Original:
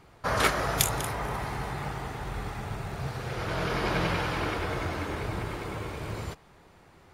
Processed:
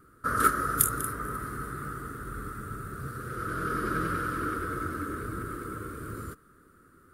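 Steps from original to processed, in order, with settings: FFT filter 180 Hz 0 dB, 260 Hz +8 dB, 480 Hz 0 dB, 850 Hz -24 dB, 1.3 kHz +13 dB, 2.3 kHz -13 dB, 6.4 kHz -6 dB, 9.4 kHz +10 dB; trim -4.5 dB

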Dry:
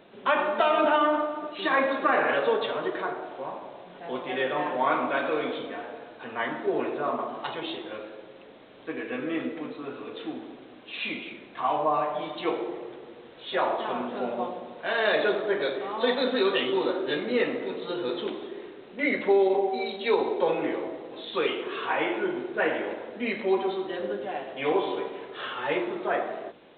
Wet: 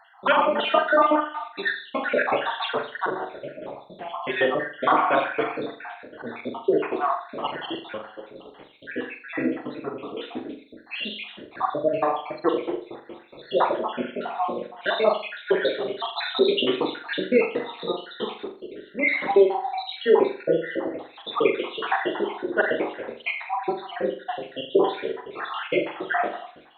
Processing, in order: random holes in the spectrogram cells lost 68%; on a send: flutter echo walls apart 7.3 m, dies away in 0.4 s; on the sum: trim +7 dB

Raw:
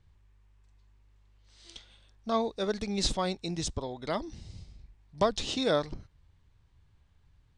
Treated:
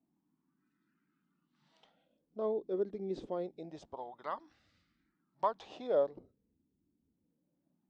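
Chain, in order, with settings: word length cut 12-bit, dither none; wah-wah 0.27 Hz 370–1400 Hz, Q 2.6; speed mistake 25 fps video run at 24 fps; band noise 150–320 Hz -69 dBFS; spectral noise reduction 11 dB

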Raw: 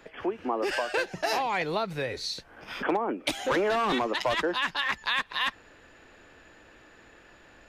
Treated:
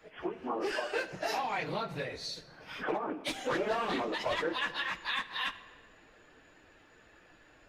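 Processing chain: phase randomisation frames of 50 ms; on a send at -12 dB: reverberation RT60 1.8 s, pre-delay 6 ms; on the sum: loudspeaker Doppler distortion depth 0.13 ms; trim -6 dB

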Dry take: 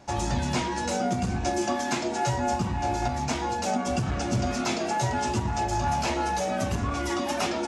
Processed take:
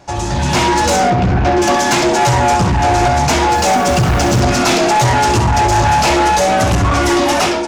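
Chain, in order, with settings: peaking EQ 230 Hz -12 dB 0.21 oct; flutter echo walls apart 11.3 m, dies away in 0.41 s; level rider gain up to 12.5 dB; 1.10–1.62 s: distance through air 240 m; saturation -16.5 dBFS, distortion -11 dB; 3.50–4.40 s: added noise white -46 dBFS; loudspeaker Doppler distortion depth 0.17 ms; trim +8 dB

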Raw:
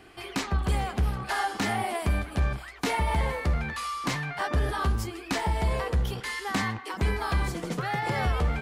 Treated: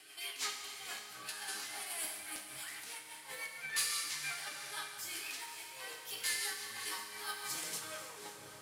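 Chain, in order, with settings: tape stop on the ending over 0.92 s; band-stop 1.2 kHz, Q 23; in parallel at -2 dB: peak limiter -26 dBFS, peak gain reduction 9 dB; on the sum: compressor with a negative ratio -29 dBFS, ratio -0.5; differentiator; chord resonator G#2 sus4, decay 0.27 s; one-sided clip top -43.5 dBFS; rotary cabinet horn 6 Hz; on a send: echo that smears into a reverb 544 ms, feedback 43%, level -11 dB; on the sum: Schroeder reverb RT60 2 s, combs from 30 ms, DRR 4 dB; random flutter of the level, depth 50%; trim +16.5 dB

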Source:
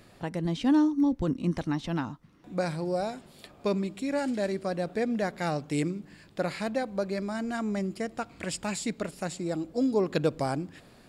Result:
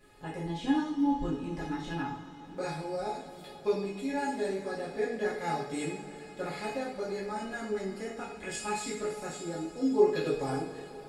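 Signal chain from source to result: feedback comb 420 Hz, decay 0.17 s, harmonics all, mix 90%; two-slope reverb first 0.53 s, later 4.9 s, from -18 dB, DRR -8 dB; trim +1.5 dB

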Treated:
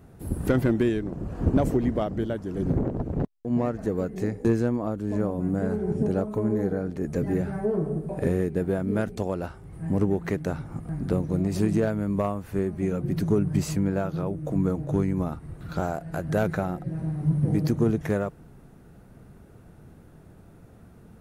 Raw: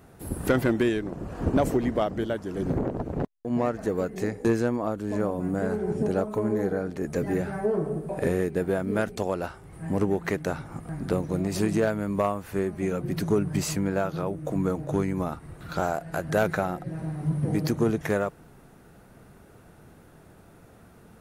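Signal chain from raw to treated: bass shelf 360 Hz +10 dB; trim -5 dB

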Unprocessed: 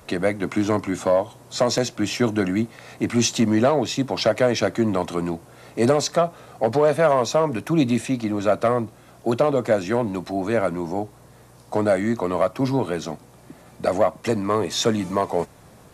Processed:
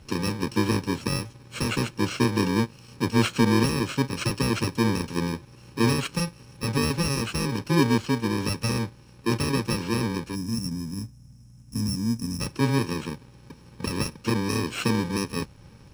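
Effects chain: bit-reversed sample order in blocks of 64 samples; bass shelf 110 Hz +6 dB; time-frequency box 10.35–12.41 s, 280–5000 Hz -17 dB; distance through air 96 m

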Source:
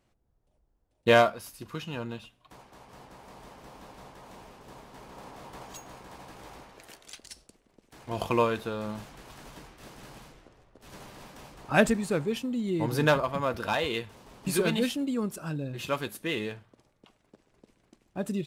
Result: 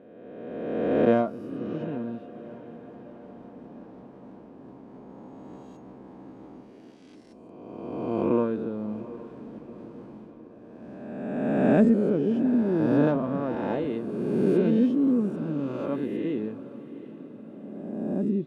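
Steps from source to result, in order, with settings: reverse spectral sustain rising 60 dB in 1.93 s; band-pass filter 260 Hz, Q 2.1; echo that smears into a reverb 775 ms, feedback 55%, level -15.5 dB; trim +7 dB

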